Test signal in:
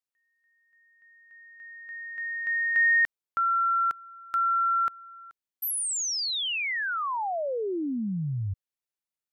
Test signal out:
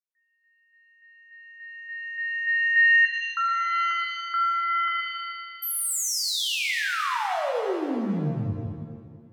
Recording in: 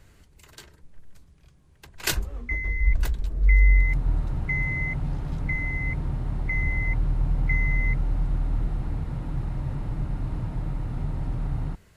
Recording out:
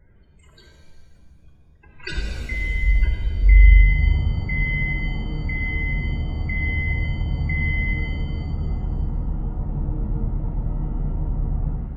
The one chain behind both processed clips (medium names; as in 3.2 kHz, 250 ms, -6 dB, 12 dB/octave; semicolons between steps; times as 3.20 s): loudest bins only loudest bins 32; pitch-shifted reverb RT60 1.7 s, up +7 st, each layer -8 dB, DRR -0.5 dB; trim -1 dB